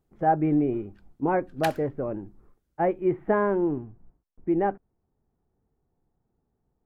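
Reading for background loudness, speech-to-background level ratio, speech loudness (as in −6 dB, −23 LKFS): −38.0 LKFS, 11.5 dB, −26.5 LKFS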